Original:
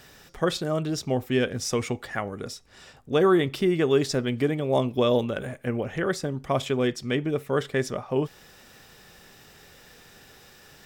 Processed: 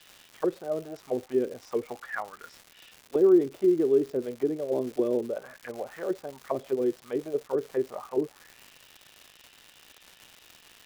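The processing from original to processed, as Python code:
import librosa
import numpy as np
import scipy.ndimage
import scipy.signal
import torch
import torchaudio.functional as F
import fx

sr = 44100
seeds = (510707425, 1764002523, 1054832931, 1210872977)

y = fx.auto_wah(x, sr, base_hz=360.0, top_hz=3300.0, q=3.3, full_db=-20.5, direction='down')
y = fx.dmg_crackle(y, sr, seeds[0], per_s=270.0, level_db=-39.0)
y = F.gain(torch.from_numpy(y), 2.0).numpy()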